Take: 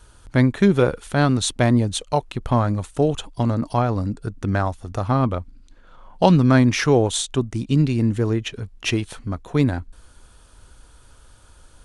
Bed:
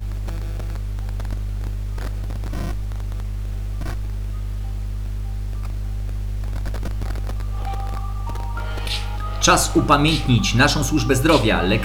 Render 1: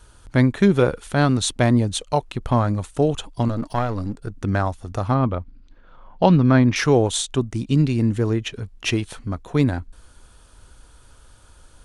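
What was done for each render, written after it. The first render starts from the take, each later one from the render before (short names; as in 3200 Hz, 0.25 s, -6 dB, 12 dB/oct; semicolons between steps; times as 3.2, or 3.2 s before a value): 3.48–4.31 half-wave gain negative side -7 dB; 5.14–6.76 air absorption 170 m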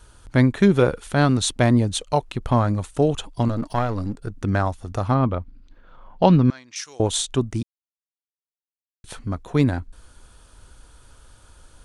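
6.5–7 band-pass 7300 Hz, Q 1.7; 7.63–9.04 mute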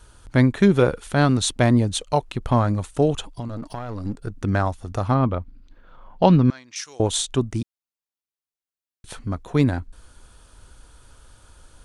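3.32–4.05 compressor, threshold -27 dBFS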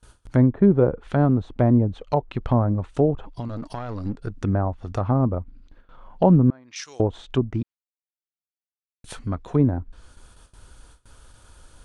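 gate with hold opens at -39 dBFS; treble ducked by the level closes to 760 Hz, closed at -17.5 dBFS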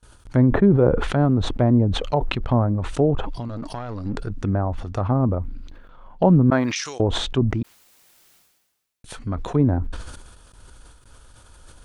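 sustainer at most 44 dB/s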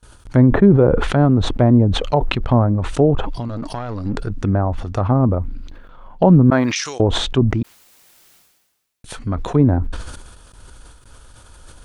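gain +4.5 dB; limiter -2 dBFS, peak gain reduction 3 dB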